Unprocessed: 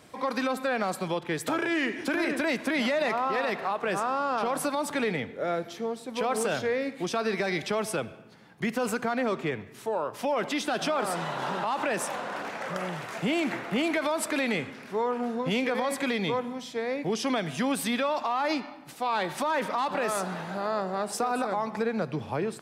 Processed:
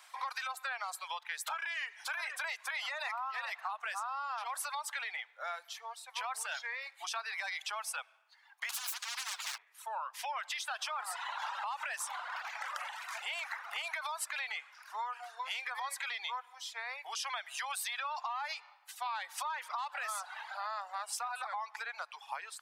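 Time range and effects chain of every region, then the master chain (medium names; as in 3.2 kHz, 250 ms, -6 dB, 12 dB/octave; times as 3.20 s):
8.69–9.58 s: comb filter that takes the minimum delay 9.8 ms + peaking EQ 280 Hz +11.5 dB 0.63 oct + spectrum-flattening compressor 10:1
whole clip: reverb removal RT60 1.1 s; steep high-pass 830 Hz 36 dB/octave; compression, threshold -35 dBFS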